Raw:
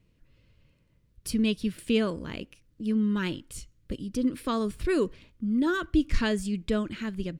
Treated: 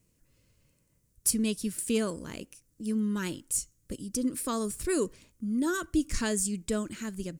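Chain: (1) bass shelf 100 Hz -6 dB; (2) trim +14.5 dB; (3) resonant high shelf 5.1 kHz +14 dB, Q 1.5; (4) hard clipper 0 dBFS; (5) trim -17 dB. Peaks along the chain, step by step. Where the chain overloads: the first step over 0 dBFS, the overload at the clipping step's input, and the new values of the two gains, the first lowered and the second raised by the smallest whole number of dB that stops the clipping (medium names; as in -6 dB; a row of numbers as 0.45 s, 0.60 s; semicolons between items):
-12.5 dBFS, +2.0 dBFS, +7.5 dBFS, 0.0 dBFS, -17.0 dBFS; step 2, 7.5 dB; step 2 +6.5 dB, step 5 -9 dB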